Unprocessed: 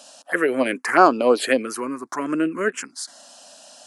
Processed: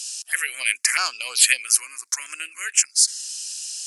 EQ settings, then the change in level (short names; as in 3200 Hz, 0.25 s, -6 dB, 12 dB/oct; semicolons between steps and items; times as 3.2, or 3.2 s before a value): resonant high-pass 2400 Hz, resonance Q 2.9; high shelf 3300 Hz +9 dB; band shelf 7900 Hz +12 dB; -3.5 dB